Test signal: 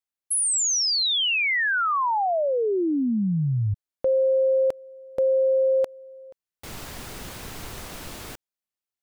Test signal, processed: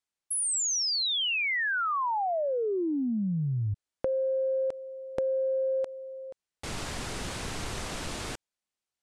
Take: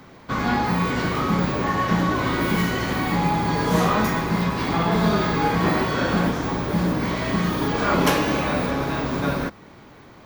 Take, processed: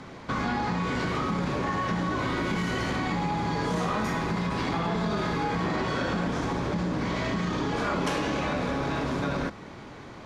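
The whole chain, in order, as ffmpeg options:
-af "lowpass=f=9600:w=0.5412,lowpass=f=9600:w=1.3066,acompressor=threshold=0.0178:ratio=4:attack=41:release=25:knee=6:detection=rms,volume=1.41"

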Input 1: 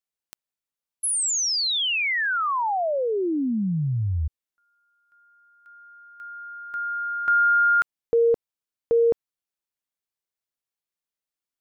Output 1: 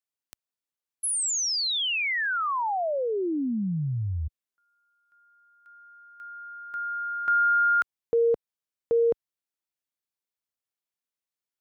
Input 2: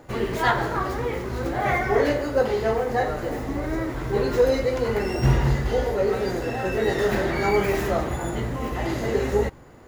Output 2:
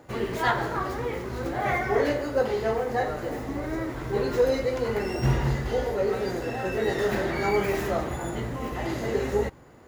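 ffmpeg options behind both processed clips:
-af "highpass=f=59:p=1,volume=0.708"

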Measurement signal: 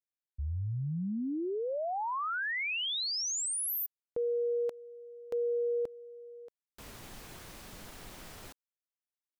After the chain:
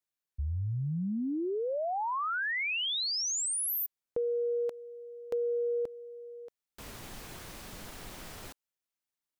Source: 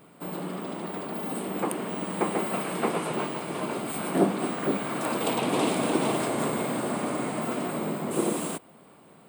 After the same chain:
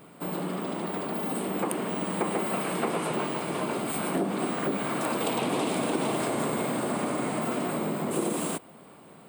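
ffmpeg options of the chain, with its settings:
-af "acompressor=threshold=0.0158:ratio=6:attack=98:release=38:knee=6:detection=peak,volume=1.41"

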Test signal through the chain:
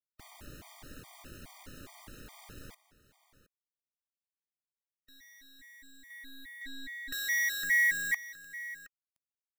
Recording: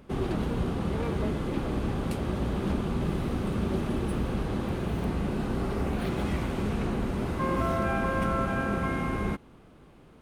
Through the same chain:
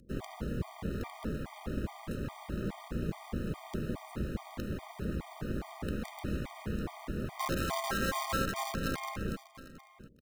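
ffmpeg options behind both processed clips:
-filter_complex "[0:a]equalizer=f=1500:w=0.71:g=5,acrossover=split=350[s0][s1];[s1]acrusher=bits=5:dc=4:mix=0:aa=0.000001[s2];[s0][s2]amix=inputs=2:normalize=0,tremolo=f=270:d=0.71,aecho=1:1:718:0.158,afftfilt=real='re*gt(sin(2*PI*2.4*pts/sr)*(1-2*mod(floor(b*sr/1024/620),2)),0)':imag='im*gt(sin(2*PI*2.4*pts/sr)*(1-2*mod(floor(b*sr/1024/620),2)),0)':win_size=1024:overlap=0.75,volume=0.794"

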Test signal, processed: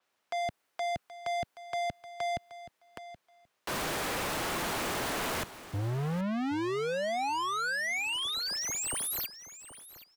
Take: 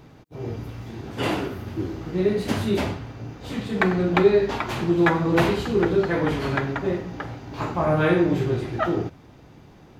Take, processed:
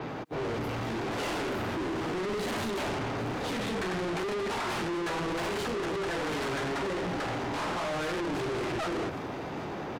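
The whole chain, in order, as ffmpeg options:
-filter_complex "[0:a]acrossover=split=120|770|2000[s0][s1][s2][s3];[s2]asoftclip=type=hard:threshold=0.0422[s4];[s0][s1][s4][s3]amix=inputs=4:normalize=0,asplit=2[s5][s6];[s6]highpass=f=720:p=1,volume=79.4,asoftclip=type=tanh:threshold=0.531[s7];[s5][s7]amix=inputs=2:normalize=0,lowpass=f=1100:p=1,volume=0.501,asoftclip=type=tanh:threshold=0.075,aecho=1:1:776|1552:0.188|0.0301,adynamicequalizer=threshold=0.00708:dfrequency=7500:dqfactor=0.7:tfrequency=7500:tqfactor=0.7:attack=5:release=100:ratio=0.375:range=3:mode=boostabove:tftype=highshelf,volume=0.376"

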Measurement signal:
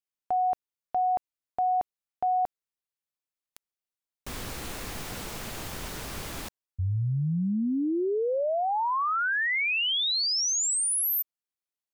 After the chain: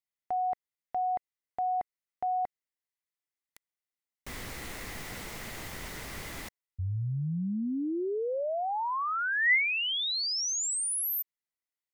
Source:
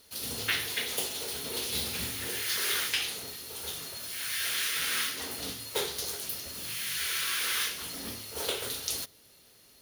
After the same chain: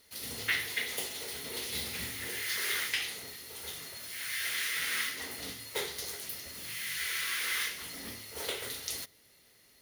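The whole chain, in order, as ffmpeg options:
-af "equalizer=f=2000:t=o:w=0.25:g=10,volume=0.596"

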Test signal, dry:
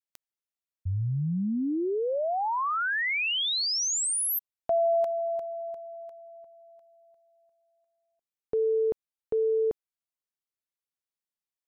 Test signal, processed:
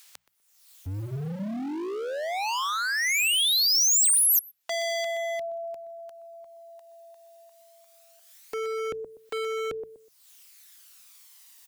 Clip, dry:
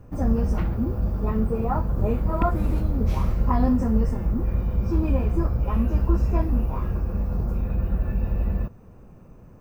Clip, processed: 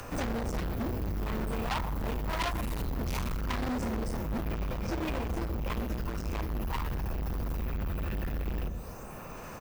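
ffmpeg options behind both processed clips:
-filter_complex "[0:a]acrossover=split=120|610[s0][s1][s2];[s2]acompressor=mode=upward:threshold=0.01:ratio=2.5:attack=0.53:release=377:knee=2.83:detection=peak[s3];[s0][s1][s3]amix=inputs=3:normalize=0,lowshelf=f=300:g=-5.5,asplit=2[s4][s5];[s5]adelay=123,lowpass=f=1100:p=1,volume=0.266,asplit=2[s6][s7];[s7]adelay=123,lowpass=f=1100:p=1,volume=0.28,asplit=2[s8][s9];[s9]adelay=123,lowpass=f=1100:p=1,volume=0.28[s10];[s6][s8][s10]amix=inputs=3:normalize=0[s11];[s4][s11]amix=inputs=2:normalize=0,aphaser=in_gain=1:out_gain=1:delay=1.1:decay=0.38:speed=0.21:type=sinusoidal,alimiter=limit=0.168:level=0:latency=1:release=427,asoftclip=type=hard:threshold=0.0251,highshelf=f=2100:g=11.5,bandreject=f=60:t=h:w=6,bandreject=f=120:t=h:w=6,bandreject=f=180:t=h:w=6,volume=1.19"

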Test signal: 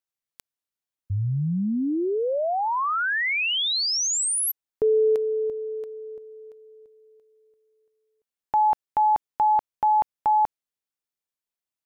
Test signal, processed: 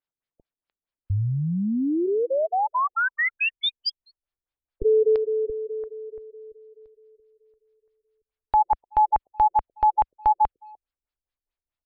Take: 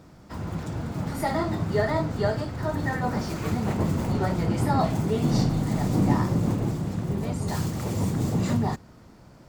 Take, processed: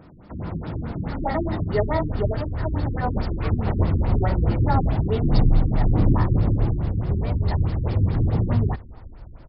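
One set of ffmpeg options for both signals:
-filter_complex "[0:a]asubboost=boost=11:cutoff=55,asplit=2[s0][s1];[s1]adelay=300,highpass=300,lowpass=3400,asoftclip=type=hard:threshold=0.141,volume=0.0447[s2];[s0][s2]amix=inputs=2:normalize=0,afftfilt=real='re*lt(b*sr/1024,380*pow(5500/380,0.5+0.5*sin(2*PI*4.7*pts/sr)))':imag='im*lt(b*sr/1024,380*pow(5500/380,0.5+0.5*sin(2*PI*4.7*pts/sr)))':win_size=1024:overlap=0.75,volume=1.41"

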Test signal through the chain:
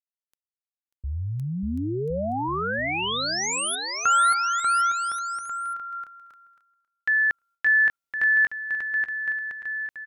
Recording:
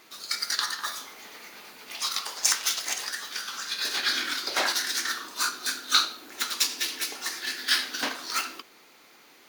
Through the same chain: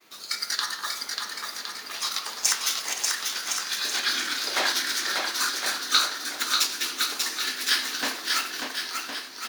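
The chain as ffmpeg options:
-af "aecho=1:1:590|1062|1440|1742|1983:0.631|0.398|0.251|0.158|0.1,agate=range=0.0224:threshold=0.00251:ratio=3:detection=peak"

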